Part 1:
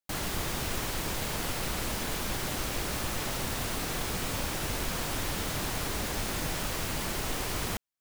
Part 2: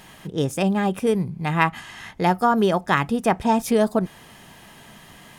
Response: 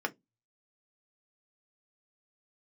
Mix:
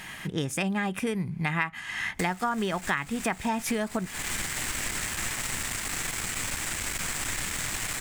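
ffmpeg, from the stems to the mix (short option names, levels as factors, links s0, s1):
-filter_complex "[0:a]equalizer=f=7800:w=2.7:g=10.5,aeval=exprs='clip(val(0),-1,0.01)':c=same,adelay=2100,volume=1.06[s0];[1:a]volume=1.12,asplit=2[s1][s2];[s2]apad=whole_len=445810[s3];[s0][s3]sidechaincompress=threshold=0.0891:ratio=8:attack=7.6:release=360[s4];[s4][s1]amix=inputs=2:normalize=0,equalizer=f=500:t=o:w=1:g=-5,equalizer=f=2000:t=o:w=1:g=10,equalizer=f=8000:t=o:w=1:g=4,acompressor=threshold=0.0501:ratio=5"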